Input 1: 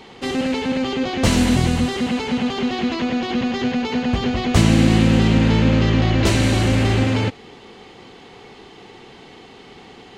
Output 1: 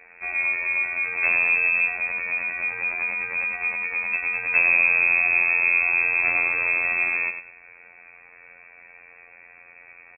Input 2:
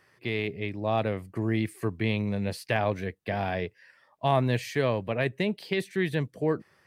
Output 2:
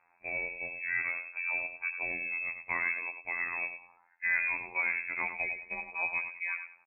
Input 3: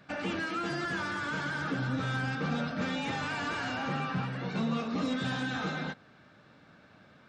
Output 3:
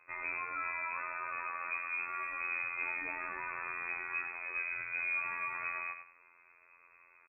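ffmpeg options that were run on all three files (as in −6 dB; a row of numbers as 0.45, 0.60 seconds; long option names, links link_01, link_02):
-af "aecho=1:1:98|196|294:0.376|0.0864|0.0199,afftfilt=real='hypot(re,im)*cos(PI*b)':imag='0':win_size=2048:overlap=0.75,lowpass=frequency=2300:width_type=q:width=0.5098,lowpass=frequency=2300:width_type=q:width=0.6013,lowpass=frequency=2300:width_type=q:width=0.9,lowpass=frequency=2300:width_type=q:width=2.563,afreqshift=-2700,volume=-2.5dB"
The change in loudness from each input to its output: −1.5, −3.5, −3.5 LU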